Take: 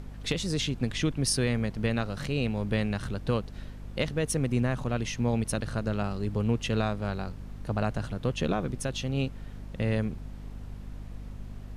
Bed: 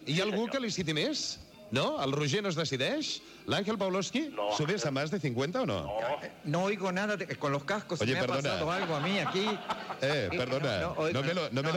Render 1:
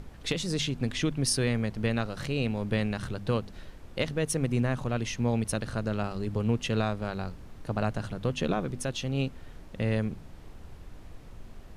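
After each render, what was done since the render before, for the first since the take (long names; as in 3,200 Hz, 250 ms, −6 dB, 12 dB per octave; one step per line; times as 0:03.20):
hum removal 50 Hz, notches 5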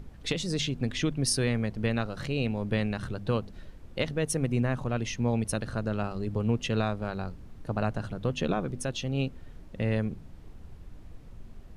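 broadband denoise 6 dB, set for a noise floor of −47 dBFS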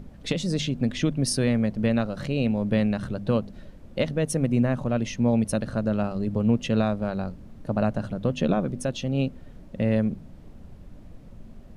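hollow resonant body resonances 210/570 Hz, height 8 dB, ringing for 20 ms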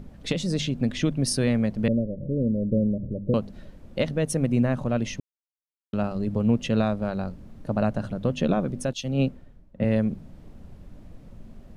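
0:01.88–0:03.34: Butterworth low-pass 600 Hz 96 dB per octave
0:05.20–0:05.93: silence
0:08.93–0:09.84: multiband upward and downward expander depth 100%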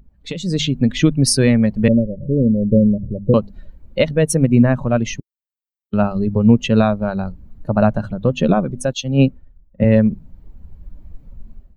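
spectral dynamics exaggerated over time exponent 1.5
automatic gain control gain up to 14.5 dB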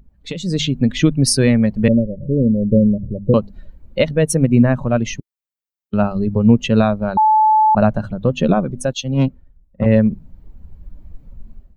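0:07.17–0:07.75: beep over 866 Hz −9 dBFS
0:09.14–0:09.86: tube saturation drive 8 dB, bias 0.45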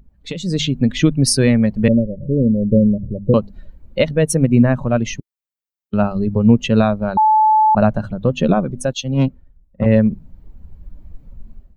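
no processing that can be heard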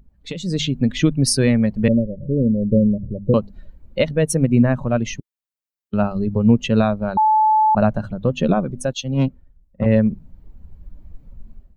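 level −2.5 dB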